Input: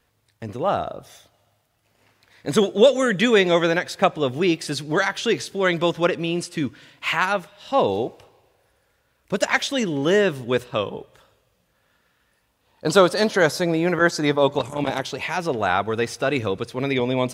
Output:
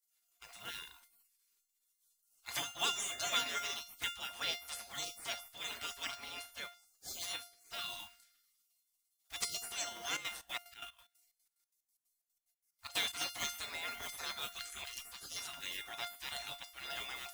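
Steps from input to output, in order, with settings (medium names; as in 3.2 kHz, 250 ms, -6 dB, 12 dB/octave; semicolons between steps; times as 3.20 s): block-companded coder 7-bit; spectral gate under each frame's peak -25 dB weak; treble shelf 6.8 kHz +4.5 dB; feedback comb 700 Hz, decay 0.34 s, mix 90%; 10.13–13.13 s: trance gate "x.x.xx.x.x." 183 bpm -12 dB; trim +12.5 dB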